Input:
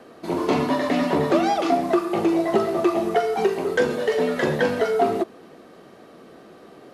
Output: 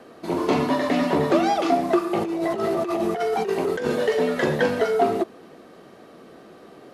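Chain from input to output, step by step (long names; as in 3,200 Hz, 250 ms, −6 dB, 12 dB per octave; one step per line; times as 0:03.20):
0:02.21–0:04.07: compressor whose output falls as the input rises −24 dBFS, ratio −1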